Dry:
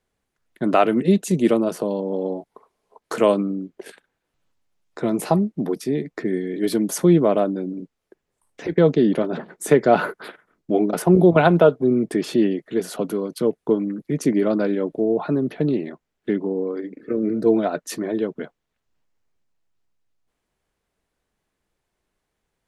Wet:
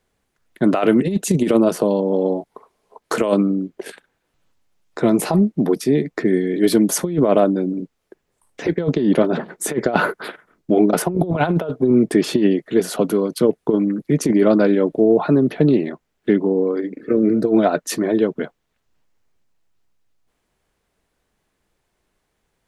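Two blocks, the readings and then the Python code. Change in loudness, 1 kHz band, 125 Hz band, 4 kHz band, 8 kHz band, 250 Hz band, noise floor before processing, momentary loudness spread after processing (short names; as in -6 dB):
+2.5 dB, 0.0 dB, +1.5 dB, +4.0 dB, +6.5 dB, +3.5 dB, -79 dBFS, 9 LU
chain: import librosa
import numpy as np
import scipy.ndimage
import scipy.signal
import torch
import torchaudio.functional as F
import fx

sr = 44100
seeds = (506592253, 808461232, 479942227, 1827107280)

y = fx.over_compress(x, sr, threshold_db=-18.0, ratio=-0.5)
y = F.gain(torch.from_numpy(y), 4.5).numpy()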